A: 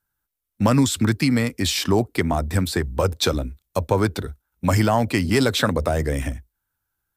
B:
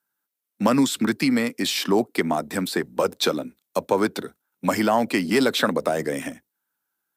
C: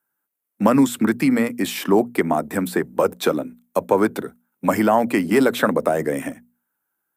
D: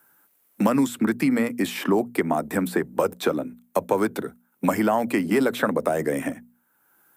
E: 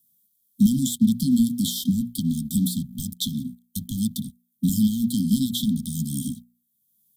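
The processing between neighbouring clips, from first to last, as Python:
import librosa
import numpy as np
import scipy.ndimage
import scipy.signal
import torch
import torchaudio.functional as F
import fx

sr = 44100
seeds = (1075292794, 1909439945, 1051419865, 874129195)

y1 = fx.dynamic_eq(x, sr, hz=7000.0, q=1.1, threshold_db=-36.0, ratio=4.0, max_db=-4)
y1 = scipy.signal.sosfilt(scipy.signal.butter(4, 190.0, 'highpass', fs=sr, output='sos'), y1)
y2 = fx.peak_eq(y1, sr, hz=4500.0, db=-13.0, octaves=1.3)
y2 = fx.hum_notches(y2, sr, base_hz=60, count=4)
y2 = F.gain(torch.from_numpy(y2), 4.0).numpy()
y3 = fx.band_squash(y2, sr, depth_pct=70)
y3 = F.gain(torch.from_numpy(y3), -4.0).numpy()
y4 = fx.leveller(y3, sr, passes=2)
y4 = fx.brickwall_bandstop(y4, sr, low_hz=260.0, high_hz=3100.0)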